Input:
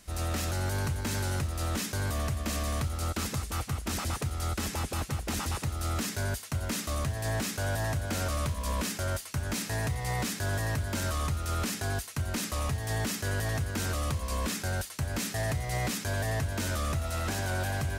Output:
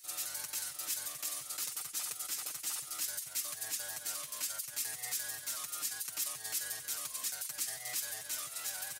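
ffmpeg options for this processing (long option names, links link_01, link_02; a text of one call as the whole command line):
ffmpeg -i in.wav -af "atempo=2,aderivative,aecho=1:1:6.6:0.88" out.wav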